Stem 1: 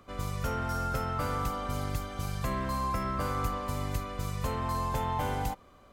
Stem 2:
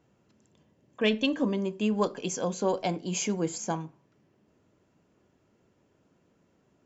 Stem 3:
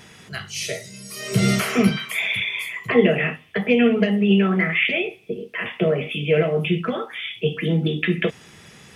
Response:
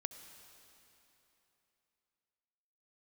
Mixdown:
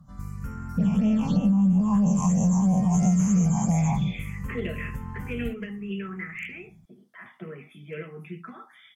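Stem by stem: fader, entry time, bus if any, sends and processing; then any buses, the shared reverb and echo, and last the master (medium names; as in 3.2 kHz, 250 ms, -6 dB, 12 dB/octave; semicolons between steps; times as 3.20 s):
-9.0 dB, 0.00 s, no send, peaking EQ 200 Hz +9.5 dB 0.77 oct
+1.0 dB, 0.00 s, send -8 dB, every event in the spectrogram widened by 480 ms; FFT filter 110 Hz 0 dB, 190 Hz +11 dB, 340 Hz -22 dB, 780 Hz +4 dB, 1.7 kHz -22 dB, 8.2 kHz 0 dB; phase shifter stages 8, 3 Hz, lowest notch 500–1400 Hz
-12.5 dB, 1.60 s, no send, Bessel high-pass 280 Hz, order 2; hard clipper -10.5 dBFS, distortion -26 dB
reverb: on, RT60 3.3 s, pre-delay 61 ms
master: bass shelf 130 Hz +10.5 dB; touch-sensitive phaser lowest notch 400 Hz, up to 4 kHz, full sweep at -15 dBFS; compression 4:1, threshold -20 dBFS, peak gain reduction 11 dB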